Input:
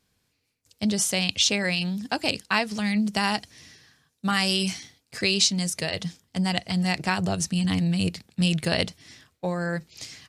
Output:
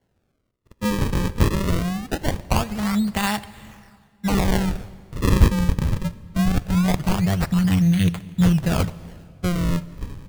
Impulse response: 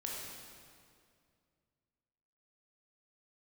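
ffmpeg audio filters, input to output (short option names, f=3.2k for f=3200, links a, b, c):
-filter_complex "[0:a]acrusher=samples=35:mix=1:aa=0.000001:lfo=1:lforange=56:lforate=0.22,asubboost=boost=4:cutoff=150,asplit=2[a][b];[1:a]atrim=start_sample=2205,asetrate=42336,aresample=44100[c];[b][c]afir=irnorm=-1:irlink=0,volume=-16dB[d];[a][d]amix=inputs=2:normalize=0,volume=1dB"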